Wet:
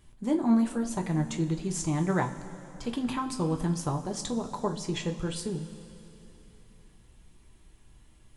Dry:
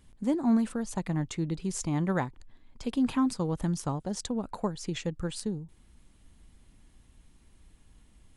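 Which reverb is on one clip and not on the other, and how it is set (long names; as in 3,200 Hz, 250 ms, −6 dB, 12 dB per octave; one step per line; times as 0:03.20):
coupled-rooms reverb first 0.23 s, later 3.3 s, from −18 dB, DRR 2 dB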